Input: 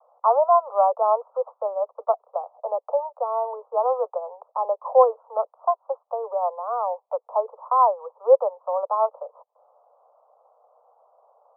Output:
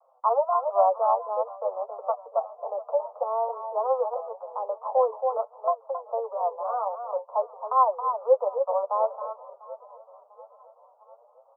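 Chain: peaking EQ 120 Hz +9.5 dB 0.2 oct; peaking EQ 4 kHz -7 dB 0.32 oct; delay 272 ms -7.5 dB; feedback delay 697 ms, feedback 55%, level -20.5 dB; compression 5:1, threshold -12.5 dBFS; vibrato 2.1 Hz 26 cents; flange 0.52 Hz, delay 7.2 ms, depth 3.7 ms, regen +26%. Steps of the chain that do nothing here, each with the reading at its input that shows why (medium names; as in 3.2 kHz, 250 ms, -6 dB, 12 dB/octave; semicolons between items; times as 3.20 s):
peaking EQ 120 Hz: input has nothing below 400 Hz; peaking EQ 4 kHz: input has nothing above 1.4 kHz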